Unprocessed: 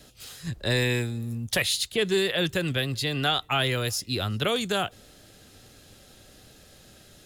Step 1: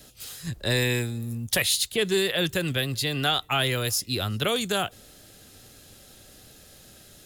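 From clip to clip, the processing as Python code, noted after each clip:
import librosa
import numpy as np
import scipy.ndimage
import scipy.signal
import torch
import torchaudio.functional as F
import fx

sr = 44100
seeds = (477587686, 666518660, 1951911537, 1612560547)

y = fx.high_shelf(x, sr, hz=8700.0, db=9.5)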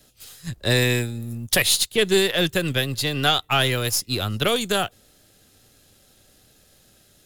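y = np.where(x < 0.0, 10.0 ** (-3.0 / 20.0) * x, x)
y = fx.upward_expand(y, sr, threshold_db=-45.0, expansion=1.5)
y = y * librosa.db_to_amplitude(7.0)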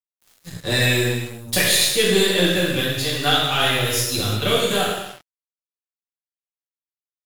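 y = fx.rev_gated(x, sr, seeds[0], gate_ms=410, shape='falling', drr_db=-7.5)
y = np.sign(y) * np.maximum(np.abs(y) - 10.0 ** (-31.0 / 20.0), 0.0)
y = y * librosa.db_to_amplitude(-5.0)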